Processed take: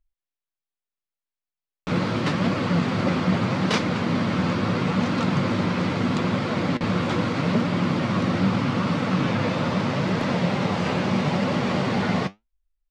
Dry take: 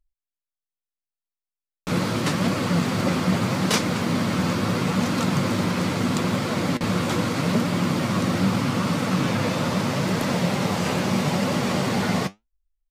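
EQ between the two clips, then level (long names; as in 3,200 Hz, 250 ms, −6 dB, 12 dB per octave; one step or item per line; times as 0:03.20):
low-pass filter 4,000 Hz 12 dB per octave
0.0 dB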